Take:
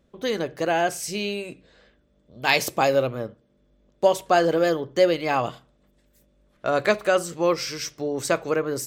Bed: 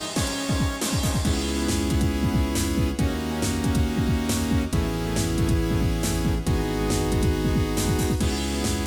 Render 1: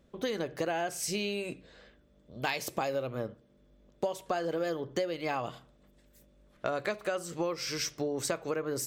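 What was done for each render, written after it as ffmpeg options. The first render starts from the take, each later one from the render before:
ffmpeg -i in.wav -af "acompressor=threshold=-29dB:ratio=10" out.wav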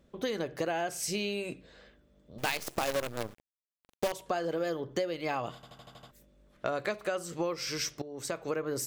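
ffmpeg -i in.wav -filter_complex "[0:a]asettb=1/sr,asplit=3[link_01][link_02][link_03];[link_01]atrim=end=2.384[link_04];[link_02]atrim=start=2.38:end=4.12,asetpts=PTS-STARTPTS,afade=type=in:duration=0.004:curve=qsin,afade=type=out:start_time=1.736:duration=0.004:curve=qsin,acrusher=bits=6:dc=4:mix=0:aa=0.000001[link_05];[link_03]atrim=start=4.116[link_06];[link_04][link_05]acrossfade=duration=0.004:curve1=hsin:curve2=qsin[link_07];[link_07][link_06]acrossfade=duration=0.004:curve1=qsin:curve2=hsin,asplit=9[link_08][link_09][link_10][link_11][link_12][link_13][link_14][link_15][link_16];[link_08]atrim=end=5.632[link_17];[link_09]atrim=start=5.548:end=5.632[link_18];[link_10]atrim=start=5.548:end=5.632[link_19];[link_11]atrim=start=5.548:end=5.632[link_20];[link_12]atrim=start=5.548:end=5.632[link_21];[link_13]atrim=start=5.548:end=5.632[link_22];[link_14]atrim=start=5.548:end=5.632[link_23];[link_15]atrim=start=6.108:end=8.02,asetpts=PTS-STARTPTS,afade=type=out:start_time=1.908:duration=0.004:curve=hsin:silence=0.149624[link_24];[link_16]atrim=start=8.02,asetpts=PTS-STARTPTS,afade=type=in:duration=0.45:silence=0.149624[link_25];[link_17][link_18]acrossfade=duration=0.004:curve1=hsin:curve2=hsin[link_26];[link_26][link_19]acrossfade=duration=0.004:curve1=hsin:curve2=hsin[link_27];[link_27][link_20]acrossfade=duration=0.004:curve1=hsin:curve2=hsin[link_28];[link_28][link_21]acrossfade=duration=0.004:curve1=hsin:curve2=hsin[link_29];[link_29][link_22]acrossfade=duration=0.004:curve1=hsin:curve2=hsin[link_30];[link_30][link_23]acrossfade=duration=0.004:curve1=hsin:curve2=hsin[link_31];[link_24][link_25]concat=n=2:v=0:a=1[link_32];[link_31][link_32]acrossfade=duration=0.004:curve1=hsin:curve2=hsin" out.wav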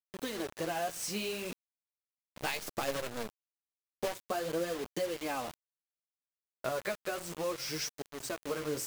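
ffmpeg -i in.wav -af "flanger=delay=3.7:depth=10:regen=10:speed=0.63:shape=triangular,acrusher=bits=6:mix=0:aa=0.000001" out.wav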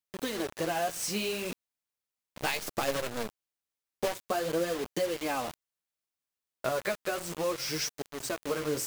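ffmpeg -i in.wav -af "volume=4dB" out.wav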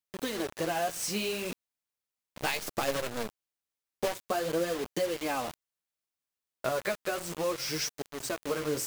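ffmpeg -i in.wav -af anull out.wav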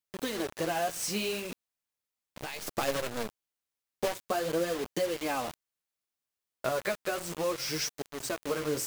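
ffmpeg -i in.wav -filter_complex "[0:a]asettb=1/sr,asplit=3[link_01][link_02][link_03];[link_01]atrim=end=1.394[link_04];[link_02]atrim=start=1.39:end=2.67,asetpts=PTS-STARTPTS,afade=type=in:duration=0.004:curve=qsin,afade=type=out:start_time=1.276:duration=0.004:curve=qsin,acompressor=threshold=-34dB:ratio=6:attack=3.2:release=140:knee=1:detection=peak[link_05];[link_03]atrim=start=2.666[link_06];[link_04][link_05]acrossfade=duration=0.004:curve1=hsin:curve2=qsin[link_07];[link_07][link_06]acrossfade=duration=0.004:curve1=qsin:curve2=hsin" out.wav

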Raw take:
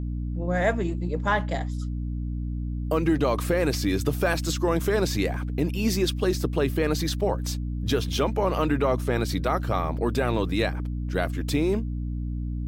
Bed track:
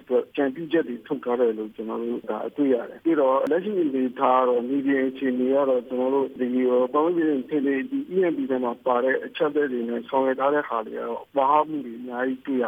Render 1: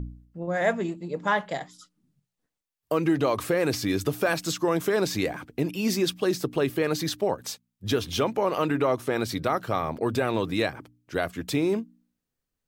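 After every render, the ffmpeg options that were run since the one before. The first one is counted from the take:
ffmpeg -i in.wav -af "bandreject=frequency=60:width_type=h:width=4,bandreject=frequency=120:width_type=h:width=4,bandreject=frequency=180:width_type=h:width=4,bandreject=frequency=240:width_type=h:width=4,bandreject=frequency=300:width_type=h:width=4" out.wav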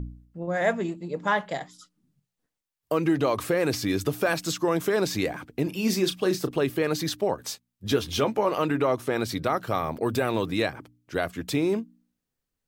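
ffmpeg -i in.wav -filter_complex "[0:a]asettb=1/sr,asplit=3[link_01][link_02][link_03];[link_01]atrim=end=5.644[link_04];[link_02]atrim=start=5.64:end=6.51,asetpts=PTS-STARTPTS,afade=type=in:duration=0.004:curve=qsin,afade=type=out:start_time=0.866:duration=0.004:curve=qsin,asplit=2[link_05][link_06];[link_06]adelay=32,volume=-10dB[link_07];[link_05][link_07]amix=inputs=2:normalize=0,atrim=end_sample=38367[link_08];[link_03]atrim=start=6.506[link_09];[link_04][link_08]acrossfade=duration=0.004:curve1=hsin:curve2=qsin[link_10];[link_10][link_09]acrossfade=duration=0.004:curve1=qsin:curve2=hsin,asettb=1/sr,asplit=3[link_11][link_12][link_13];[link_11]atrim=end=7.344[link_14];[link_12]atrim=start=7.34:end=8.52,asetpts=PTS-STARTPTS,afade=type=in:duration=0.004:curve=qsin,afade=type=out:start_time=1.176:duration=0.004:curve=qsin,asplit=2[link_15][link_16];[link_16]adelay=14,volume=-8.5dB[link_17];[link_15][link_17]amix=inputs=2:normalize=0,atrim=end_sample=52038[link_18];[link_13]atrim=start=8.516[link_19];[link_14][link_18]acrossfade=duration=0.004:curve1=hsin:curve2=qsin[link_20];[link_20][link_19]acrossfade=duration=0.004:curve1=qsin:curve2=hsin,asettb=1/sr,asplit=3[link_21][link_22][link_23];[link_21]atrim=end=9.674[link_24];[link_22]atrim=start=9.67:end=10.46,asetpts=PTS-STARTPTS,afade=type=in:duration=0.004:curve=qsin,afade=type=out:start_time=0.786:duration=0.004:curve=qsin,highshelf=frequency=11000:gain=10[link_25];[link_23]atrim=start=10.456[link_26];[link_24][link_25]acrossfade=duration=0.004:curve1=hsin:curve2=qsin[link_27];[link_27][link_26]acrossfade=duration=0.004:curve1=qsin:curve2=hsin" out.wav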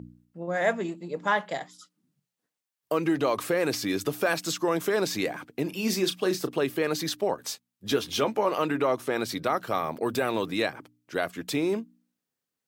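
ffmpeg -i in.wav -af "highpass=150,lowshelf=frequency=410:gain=-3" out.wav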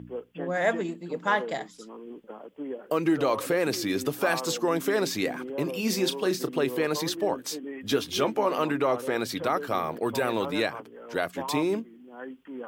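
ffmpeg -i in.wav -i bed.wav -filter_complex "[1:a]volume=-14.5dB[link_01];[0:a][link_01]amix=inputs=2:normalize=0" out.wav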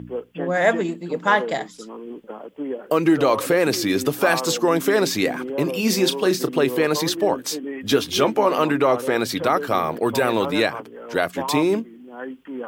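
ffmpeg -i in.wav -af "volume=7dB" out.wav

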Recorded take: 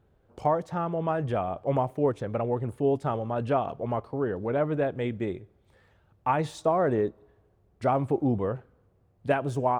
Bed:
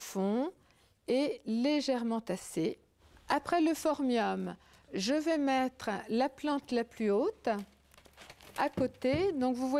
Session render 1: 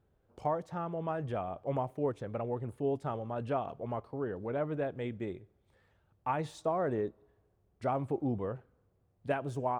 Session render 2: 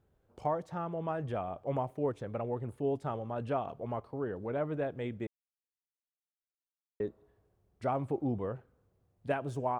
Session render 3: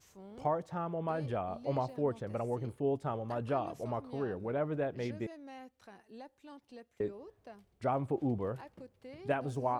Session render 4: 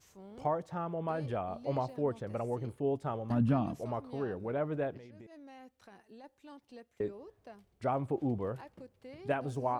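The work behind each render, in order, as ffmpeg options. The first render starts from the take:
ffmpeg -i in.wav -af "volume=-7.5dB" out.wav
ffmpeg -i in.wav -filter_complex "[0:a]asplit=3[link_01][link_02][link_03];[link_01]atrim=end=5.27,asetpts=PTS-STARTPTS,afade=type=out:start_time=5.266:duration=0.004:curve=hsin[link_04];[link_02]atrim=start=5.27:end=7,asetpts=PTS-STARTPTS,volume=0[link_05];[link_03]atrim=start=7,asetpts=PTS-STARTPTS,afade=type=in:duration=0.004:curve=hsin[link_06];[link_04][link_05][link_06]concat=n=3:v=0:a=1" out.wav
ffmpeg -i in.wav -i bed.wav -filter_complex "[1:a]volume=-19.5dB[link_01];[0:a][link_01]amix=inputs=2:normalize=0" out.wav
ffmpeg -i in.wav -filter_complex "[0:a]asettb=1/sr,asplit=3[link_01][link_02][link_03];[link_01]atrim=end=3.304[link_04];[link_02]atrim=start=3.3:end=3.75,asetpts=PTS-STARTPTS,afade=type=in:duration=0.004:curve=qsin,afade=type=out:start_time=0.446:duration=0.004:curve=qsin,lowshelf=frequency=310:width_type=q:width=3:gain=9[link_05];[link_03]atrim=start=3.746[link_06];[link_04][link_05]acrossfade=duration=0.004:curve1=hsin:curve2=qsin[link_07];[link_07][link_06]acrossfade=duration=0.004:curve1=qsin:curve2=hsin,asettb=1/sr,asplit=3[link_08][link_09][link_10];[link_08]atrim=end=4.974[link_11];[link_09]atrim=start=4.97:end=6.24,asetpts=PTS-STARTPTS,afade=type=in:duration=0.004:curve=qsin,afade=type=out:start_time=1.266:duration=0.004:curve=qsin,acompressor=threshold=-48dB:ratio=12:attack=3.2:release=140:knee=1:detection=peak[link_12];[link_10]atrim=start=6.236[link_13];[link_11][link_12]acrossfade=duration=0.004:curve1=hsin:curve2=qsin[link_14];[link_14][link_13]acrossfade=duration=0.004:curve1=qsin:curve2=hsin" out.wav

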